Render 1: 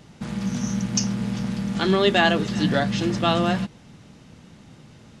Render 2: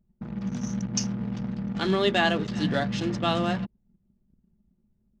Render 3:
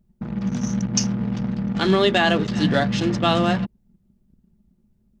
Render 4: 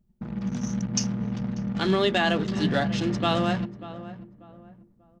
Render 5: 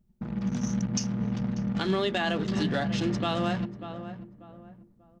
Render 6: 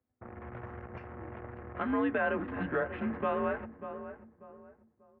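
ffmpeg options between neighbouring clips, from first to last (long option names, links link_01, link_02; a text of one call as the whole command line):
ffmpeg -i in.wav -af "anlmdn=15.8,volume=-4.5dB" out.wav
ffmpeg -i in.wav -af "alimiter=level_in=12.5dB:limit=-1dB:release=50:level=0:latency=1,volume=-6dB" out.wav
ffmpeg -i in.wav -filter_complex "[0:a]asplit=2[link_01][link_02];[link_02]adelay=590,lowpass=frequency=1300:poles=1,volume=-14dB,asplit=2[link_03][link_04];[link_04]adelay=590,lowpass=frequency=1300:poles=1,volume=0.34,asplit=2[link_05][link_06];[link_06]adelay=590,lowpass=frequency=1300:poles=1,volume=0.34[link_07];[link_01][link_03][link_05][link_07]amix=inputs=4:normalize=0,volume=-5dB" out.wav
ffmpeg -i in.wav -af "alimiter=limit=-17.5dB:level=0:latency=1:release=223" out.wav
ffmpeg -i in.wav -af "highpass=frequency=350:width_type=q:width=0.5412,highpass=frequency=350:width_type=q:width=1.307,lowpass=frequency=2200:width_type=q:width=0.5176,lowpass=frequency=2200:width_type=q:width=0.7071,lowpass=frequency=2200:width_type=q:width=1.932,afreqshift=-120" out.wav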